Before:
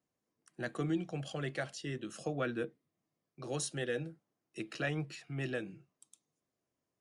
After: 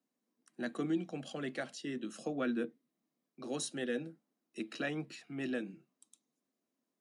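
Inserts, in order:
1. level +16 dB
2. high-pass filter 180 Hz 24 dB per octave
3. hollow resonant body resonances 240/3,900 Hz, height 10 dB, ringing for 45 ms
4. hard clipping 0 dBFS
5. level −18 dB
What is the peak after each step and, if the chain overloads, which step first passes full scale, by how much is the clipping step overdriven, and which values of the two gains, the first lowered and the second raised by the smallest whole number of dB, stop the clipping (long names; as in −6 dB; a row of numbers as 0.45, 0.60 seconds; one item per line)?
−7.0, −6.5, −5.0, −5.0, −23.0 dBFS
no step passes full scale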